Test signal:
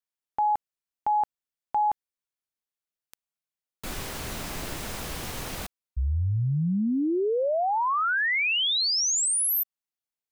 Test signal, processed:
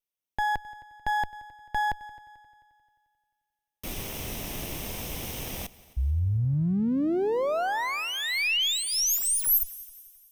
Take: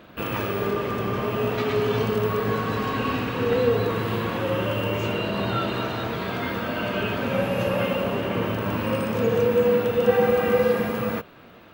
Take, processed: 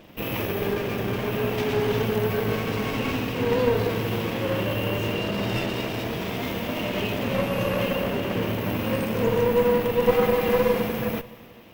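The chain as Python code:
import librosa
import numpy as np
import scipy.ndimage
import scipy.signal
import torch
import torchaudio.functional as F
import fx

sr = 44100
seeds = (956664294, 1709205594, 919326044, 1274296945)

y = fx.lower_of_two(x, sr, delay_ms=0.35)
y = fx.peak_eq(y, sr, hz=13000.0, db=9.5, octaves=0.23)
y = fx.echo_heads(y, sr, ms=88, heads='second and third', feedback_pct=48, wet_db=-22.0)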